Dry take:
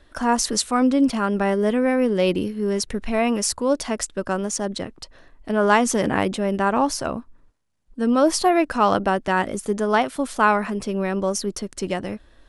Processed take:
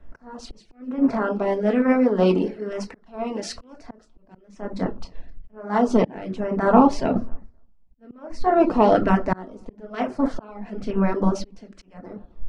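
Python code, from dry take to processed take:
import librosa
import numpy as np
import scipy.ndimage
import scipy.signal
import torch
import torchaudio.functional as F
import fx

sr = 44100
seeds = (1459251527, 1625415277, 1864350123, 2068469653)

y = fx.bin_compress(x, sr, power=0.6)
y = fx.room_shoebox(y, sr, seeds[0], volume_m3=450.0, walls='furnished', distance_m=1.6)
y = fx.dereverb_blind(y, sr, rt60_s=0.76)
y = fx.low_shelf(y, sr, hz=210.0, db=-8.0, at=(1.17, 3.54))
y = fx.echo_feedback(y, sr, ms=261, feedback_pct=33, wet_db=-23)
y = fx.filter_lfo_notch(y, sr, shape='saw_down', hz=1.1, low_hz=800.0, high_hz=4600.0, q=1.8)
y = fx.spacing_loss(y, sr, db_at_10k=31)
y = fx.auto_swell(y, sr, attack_ms=502.0)
y = fx.band_widen(y, sr, depth_pct=100)
y = y * 10.0 ** (-1.5 / 20.0)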